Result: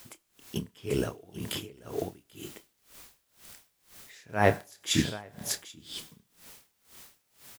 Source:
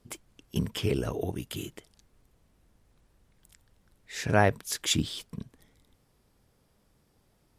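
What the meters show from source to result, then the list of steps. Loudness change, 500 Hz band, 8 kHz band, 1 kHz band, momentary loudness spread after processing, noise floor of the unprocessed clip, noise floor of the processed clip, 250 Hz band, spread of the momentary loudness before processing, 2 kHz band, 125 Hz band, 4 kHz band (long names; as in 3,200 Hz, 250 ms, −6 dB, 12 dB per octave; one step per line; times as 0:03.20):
−2.0 dB, 0.0 dB, −0.5 dB, −1.0 dB, 25 LU, −69 dBFS, −74 dBFS, −0.5 dB, 20 LU, −1.0 dB, −3.5 dB, −1.0 dB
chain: low-shelf EQ 82 Hz −12 dB
in parallel at −3.5 dB: bit-depth reduction 8 bits, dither triangular
on the sum: double-tracking delay 28 ms −11 dB
single-tap delay 787 ms −3 dB
four-comb reverb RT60 1.1 s, combs from 31 ms, DRR 16.5 dB
tremolo with a sine in dB 2 Hz, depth 26 dB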